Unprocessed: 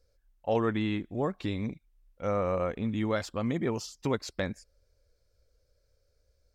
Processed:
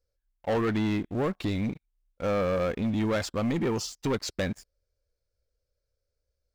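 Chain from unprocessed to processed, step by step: sample leveller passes 3; gain -5 dB

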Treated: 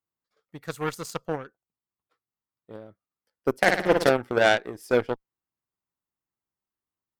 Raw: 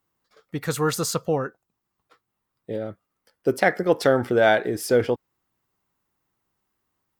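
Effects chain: 3.57–4.11 flutter echo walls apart 9.6 m, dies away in 0.99 s; added harmonics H 3 -22 dB, 5 -35 dB, 7 -20 dB, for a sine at -4.5 dBFS

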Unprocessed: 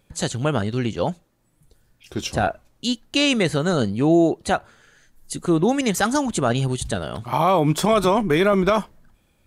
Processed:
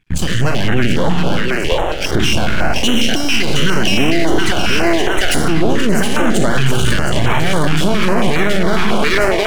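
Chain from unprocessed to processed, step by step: spectral trails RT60 0.70 s; compressor 5:1, threshold -33 dBFS, peak gain reduction 18.5 dB; 5.71–6.42 fixed phaser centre 460 Hz, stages 8; AGC gain up to 11.5 dB; band shelf 2200 Hz +13.5 dB 1.3 oct; gate with hold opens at -33 dBFS; tilt -2 dB/oct; half-wave rectifier; split-band echo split 340 Hz, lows 95 ms, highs 0.715 s, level -4.5 dB; maximiser +17 dB; stepped notch 7.3 Hz 560–4700 Hz; gain -1 dB

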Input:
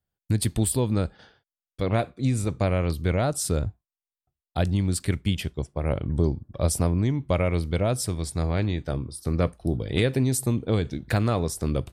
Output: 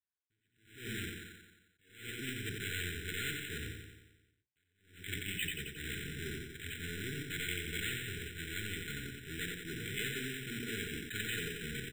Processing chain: HPF 67 Hz 12 dB/oct; notches 60/120/180/240/300/360/420/480 Hz; in parallel at -8.5 dB: fuzz box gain 41 dB, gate -41 dBFS; on the sum: AGC; soft clip -19.5 dBFS, distortion -9 dB; brick-wall FIR band-stop 470–1400 Hz; pre-emphasis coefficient 0.97; on a send: feedback echo 89 ms, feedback 59%, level -5 dB; on the sum: careless resampling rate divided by 8×, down filtered, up hold; attack slew limiter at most 110 dB/s; gain +5 dB

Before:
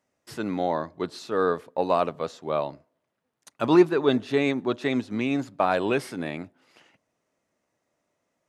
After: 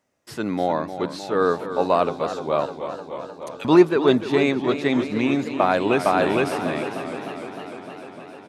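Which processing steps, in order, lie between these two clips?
2.66–3.65 steep high-pass 1800 Hz; 5.52–6.37 echo throw 0.46 s, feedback 25%, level -0.5 dB; warbling echo 0.303 s, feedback 76%, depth 99 cents, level -11 dB; gain +3.5 dB

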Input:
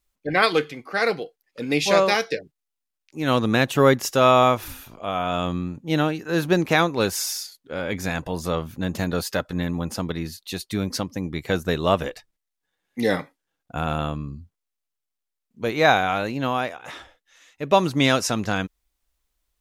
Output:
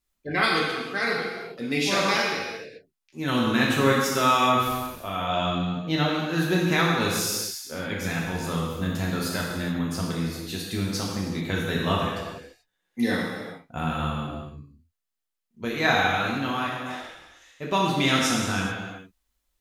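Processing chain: 5.19–6.15 fifteen-band EQ 630 Hz +7 dB, 4000 Hz +6 dB, 10000 Hz -10 dB; non-linear reverb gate 0.46 s falling, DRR -4 dB; dynamic EQ 570 Hz, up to -7 dB, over -30 dBFS, Q 1.4; gain -5.5 dB

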